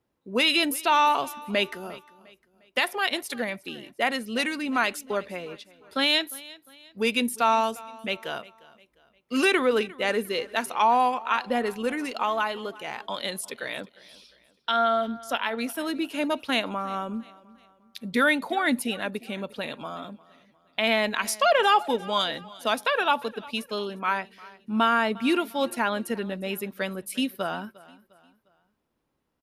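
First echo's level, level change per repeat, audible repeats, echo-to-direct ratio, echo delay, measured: −21.0 dB, −8.0 dB, 2, −20.0 dB, 353 ms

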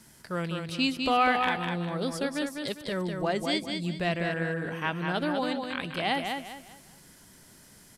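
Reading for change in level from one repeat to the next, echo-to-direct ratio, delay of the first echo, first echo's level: −10.0 dB, −4.5 dB, 201 ms, −5.0 dB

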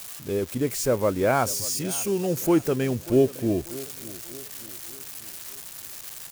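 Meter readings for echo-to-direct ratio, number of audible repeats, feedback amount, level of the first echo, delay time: −17.5 dB, 3, 46%, −18.5 dB, 589 ms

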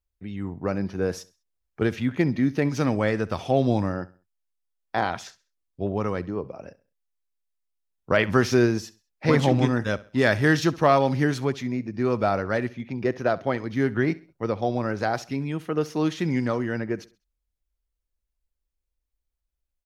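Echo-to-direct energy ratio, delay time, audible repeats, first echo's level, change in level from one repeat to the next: −19.5 dB, 66 ms, 2, −20.0 dB, −9.0 dB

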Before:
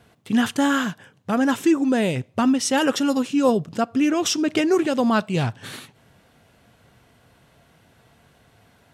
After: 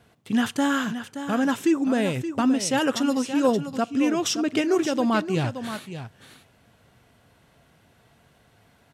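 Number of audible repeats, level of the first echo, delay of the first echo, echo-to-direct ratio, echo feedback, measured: 1, −10.5 dB, 574 ms, −10.5 dB, repeats not evenly spaced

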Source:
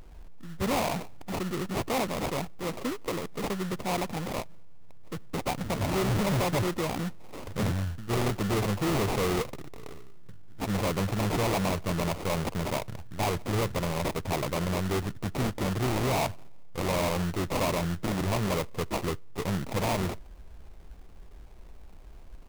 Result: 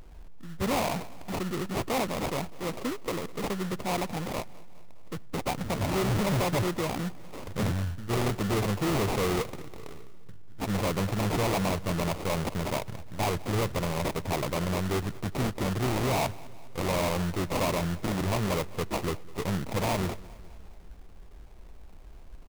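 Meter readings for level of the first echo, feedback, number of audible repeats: −21.5 dB, 58%, 3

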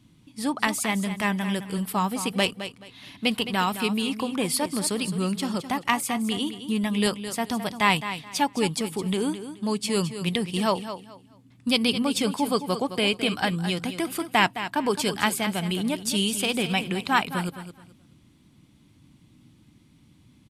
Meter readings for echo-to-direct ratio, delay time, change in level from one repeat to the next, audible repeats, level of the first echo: −10.5 dB, 214 ms, −12.5 dB, 2, −11.0 dB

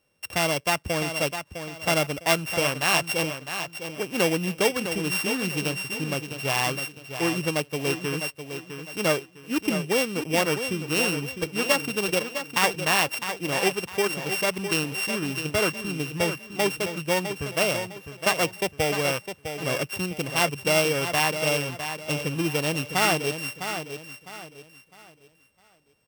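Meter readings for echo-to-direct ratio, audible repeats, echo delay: −8.5 dB, 3, 656 ms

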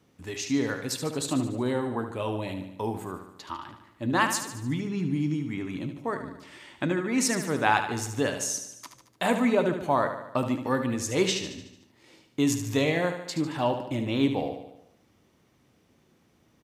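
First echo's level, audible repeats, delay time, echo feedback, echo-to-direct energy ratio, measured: −9.0 dB, 6, 74 ms, 56%, −7.5 dB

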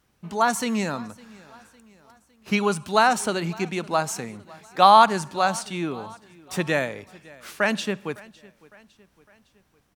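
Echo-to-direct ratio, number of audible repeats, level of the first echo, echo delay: −22.0 dB, 3, −23.0 dB, 557 ms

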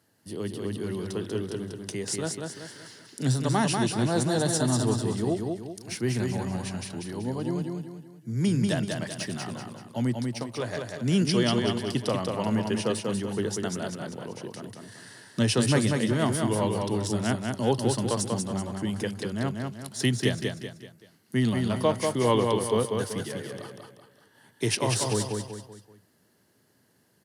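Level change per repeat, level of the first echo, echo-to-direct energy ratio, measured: −7.5 dB, −4.0 dB, −3.0 dB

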